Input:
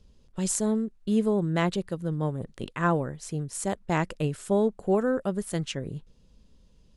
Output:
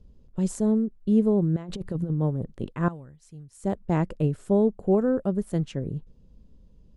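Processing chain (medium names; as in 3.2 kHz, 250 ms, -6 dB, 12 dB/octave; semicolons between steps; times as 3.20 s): tilt shelf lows +8 dB, about 920 Hz; 1.56–2.10 s: compressor with a negative ratio -26 dBFS, ratio -0.5; 2.88–3.64 s: amplifier tone stack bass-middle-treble 5-5-5; trim -3 dB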